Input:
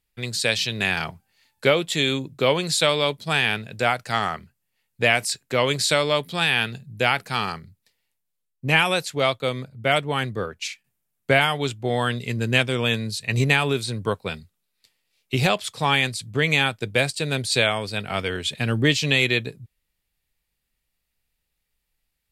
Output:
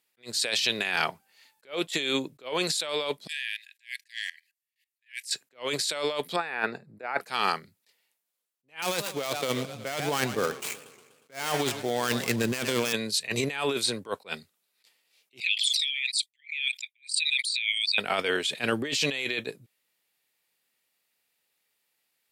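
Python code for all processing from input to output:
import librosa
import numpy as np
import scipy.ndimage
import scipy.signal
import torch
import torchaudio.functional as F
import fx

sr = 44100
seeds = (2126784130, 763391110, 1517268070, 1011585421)

y = fx.chain(x, sr, fx.brickwall_highpass(low_hz=1600.0),
    fx.level_steps(step_db=19), at=(3.27, 5.31))
y = fx.chain(y, sr, fx.low_shelf(hz=180.0, db=-12.0),
    fx.over_compress(threshold_db=-26.0, ratio=-0.5),
    fx.moving_average(points=14), at=(6.36, 7.21))
y = fx.chain(y, sr, fx.dead_time(dead_ms=0.12),
    fx.bass_treble(bass_db=8, treble_db=4),
    fx.echo_warbled(ms=120, feedback_pct=58, rate_hz=2.8, cents=193, wet_db=-18), at=(8.82, 12.93))
y = fx.chain(y, sr, fx.envelope_sharpen(power=2.0),
    fx.steep_highpass(hz=2000.0, slope=96),
    fx.pre_swell(db_per_s=32.0), at=(15.4, 17.98))
y = scipy.signal.sosfilt(scipy.signal.butter(2, 340.0, 'highpass', fs=sr, output='sos'), y)
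y = fx.over_compress(y, sr, threshold_db=-28.0, ratio=-1.0)
y = fx.attack_slew(y, sr, db_per_s=290.0)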